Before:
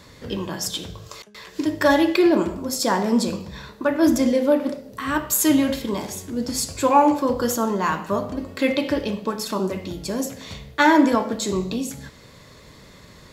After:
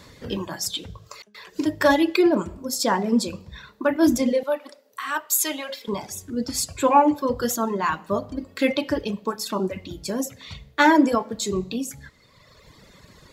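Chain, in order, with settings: reverb removal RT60 1.7 s; 4.43–5.88 s: high-pass 710 Hz 12 dB/octave

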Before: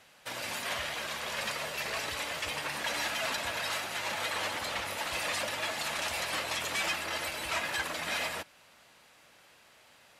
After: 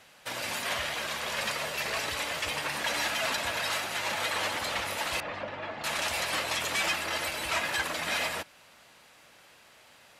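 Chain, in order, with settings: 5.20–5.84 s: tape spacing loss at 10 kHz 42 dB; trim +3 dB

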